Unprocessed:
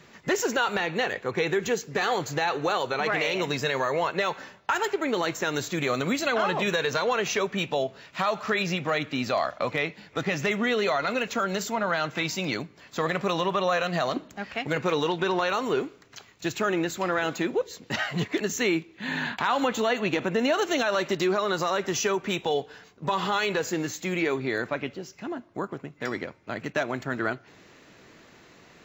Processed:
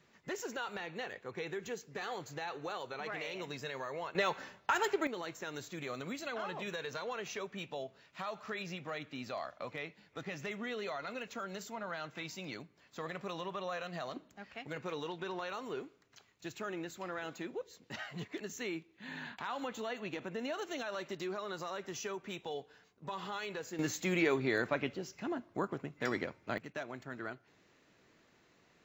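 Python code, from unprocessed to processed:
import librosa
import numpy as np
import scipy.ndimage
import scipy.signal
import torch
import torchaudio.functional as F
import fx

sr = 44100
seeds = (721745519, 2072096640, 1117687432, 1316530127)

y = fx.gain(x, sr, db=fx.steps((0.0, -15.0), (4.15, -5.5), (5.07, -15.0), (23.79, -4.0), (26.58, -14.5)))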